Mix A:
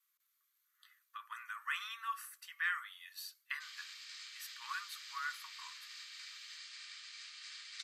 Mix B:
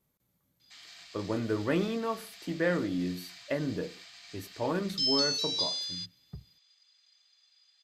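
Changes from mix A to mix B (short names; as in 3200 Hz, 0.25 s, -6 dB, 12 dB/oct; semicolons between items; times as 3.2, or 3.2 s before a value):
background: entry -2.90 s; master: remove steep high-pass 1100 Hz 72 dB/oct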